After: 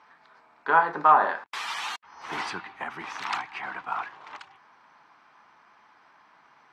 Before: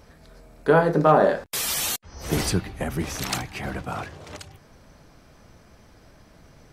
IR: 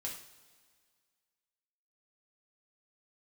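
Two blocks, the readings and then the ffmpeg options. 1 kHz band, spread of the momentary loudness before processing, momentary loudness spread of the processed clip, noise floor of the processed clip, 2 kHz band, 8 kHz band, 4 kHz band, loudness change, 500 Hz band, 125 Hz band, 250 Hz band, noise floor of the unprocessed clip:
+2.5 dB, 16 LU, 19 LU, −59 dBFS, +1.5 dB, −18.0 dB, −7.0 dB, −3.0 dB, −12.5 dB, −23.5 dB, −16.5 dB, −53 dBFS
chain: -af "highpass=350,lowpass=2700,lowshelf=frequency=720:width_type=q:width=3:gain=-8.5"

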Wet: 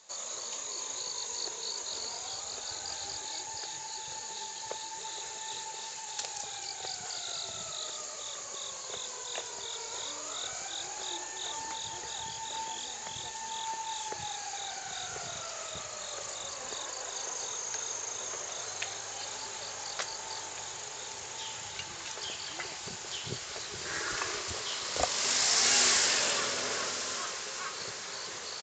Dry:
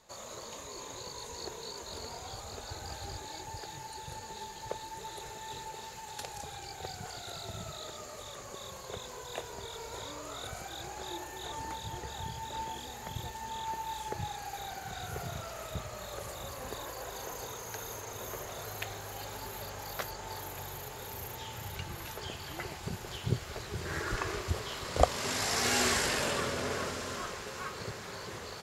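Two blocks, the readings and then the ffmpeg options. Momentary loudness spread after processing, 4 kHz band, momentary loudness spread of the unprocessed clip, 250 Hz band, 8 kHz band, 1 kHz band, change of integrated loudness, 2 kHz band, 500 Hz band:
8 LU, +6.5 dB, 11 LU, −7.0 dB, +9.0 dB, −1.0 dB, +4.0 dB, +1.5 dB, −4.0 dB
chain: -af "aemphasis=mode=production:type=riaa,aresample=16000,asoftclip=type=tanh:threshold=-17.5dB,aresample=44100"

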